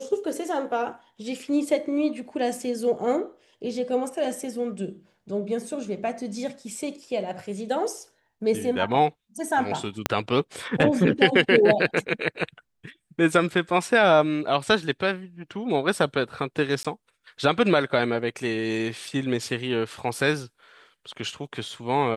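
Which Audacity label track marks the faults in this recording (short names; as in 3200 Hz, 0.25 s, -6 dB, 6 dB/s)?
10.060000	10.060000	pop -5 dBFS
16.830000	16.850000	gap 16 ms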